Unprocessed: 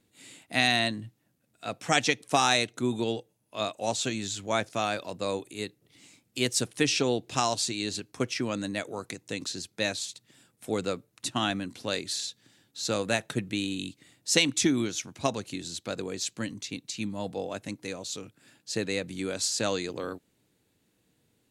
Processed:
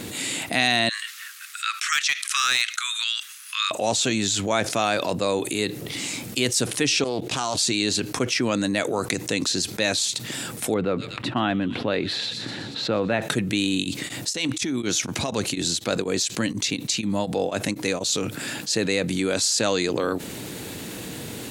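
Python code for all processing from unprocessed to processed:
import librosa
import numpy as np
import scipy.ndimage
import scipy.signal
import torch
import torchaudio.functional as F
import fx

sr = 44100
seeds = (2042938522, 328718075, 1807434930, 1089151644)

y = fx.chain(x, sr, fx.steep_highpass(hz=1200.0, slope=72),
    fx.high_shelf(hz=12000.0, db=-10.0),
    fx.overload_stage(gain_db=18.0), at=(0.89, 3.71))
y = fx.chain(y, sr, fx.highpass(hz=79.0, slope=12),
    fx.level_steps(step_db=21),
    fx.doppler_dist(depth_ms=0.32), at=(7.04, 7.57))
y = fx.chain(y, sr, fx.air_absorb(metres=460.0),
    fx.echo_wet_highpass(ms=123, feedback_pct=53, hz=5600.0, wet_db=-8), at=(10.74, 13.22))
y = fx.chain(y, sr, fx.over_compress(threshold_db=-32.0, ratio=-1.0),
    fx.tremolo_abs(hz=4.1), at=(13.73, 18.17))
y = fx.low_shelf(y, sr, hz=80.0, db=-8.5)
y = fx.env_flatten(y, sr, amount_pct=70)
y = F.gain(torch.from_numpy(y), 1.5).numpy()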